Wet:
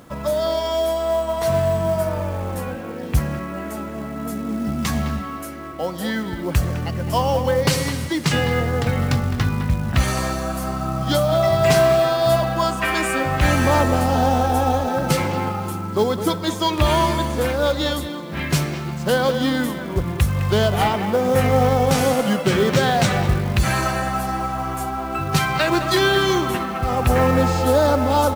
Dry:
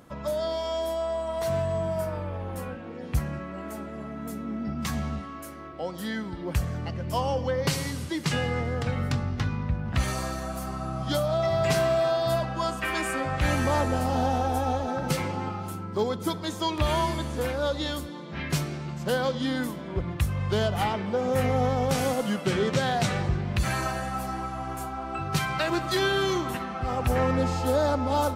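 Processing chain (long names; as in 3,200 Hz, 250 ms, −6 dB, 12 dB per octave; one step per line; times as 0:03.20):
far-end echo of a speakerphone 210 ms, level −9 dB
log-companded quantiser 6 bits
level +7.5 dB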